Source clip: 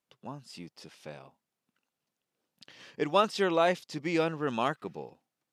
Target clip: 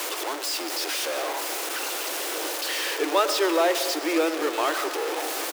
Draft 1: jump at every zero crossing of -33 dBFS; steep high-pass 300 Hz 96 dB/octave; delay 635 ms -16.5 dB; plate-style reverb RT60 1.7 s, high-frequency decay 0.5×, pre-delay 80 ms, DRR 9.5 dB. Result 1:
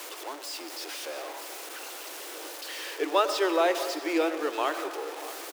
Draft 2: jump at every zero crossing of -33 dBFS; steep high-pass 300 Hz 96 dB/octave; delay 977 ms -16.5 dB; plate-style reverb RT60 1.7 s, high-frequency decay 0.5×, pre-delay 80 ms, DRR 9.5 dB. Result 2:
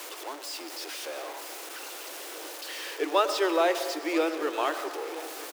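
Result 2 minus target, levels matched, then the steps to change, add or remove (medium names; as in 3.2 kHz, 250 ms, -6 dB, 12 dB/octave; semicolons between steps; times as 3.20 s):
jump at every zero crossing: distortion -8 dB
change: jump at every zero crossing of -22.5 dBFS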